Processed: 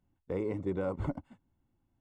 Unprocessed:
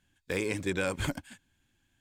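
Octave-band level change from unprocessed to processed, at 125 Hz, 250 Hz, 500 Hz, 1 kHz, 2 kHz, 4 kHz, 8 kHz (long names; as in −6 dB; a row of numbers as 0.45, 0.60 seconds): −1.0 dB, −1.0 dB, −1.0 dB, −3.5 dB, −16.5 dB, below −20 dB, below −25 dB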